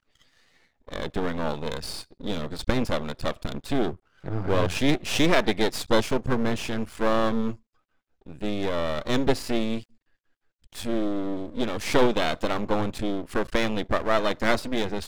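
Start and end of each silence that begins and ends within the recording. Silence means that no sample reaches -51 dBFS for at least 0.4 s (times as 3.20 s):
7.59–8.21 s
9.95–10.64 s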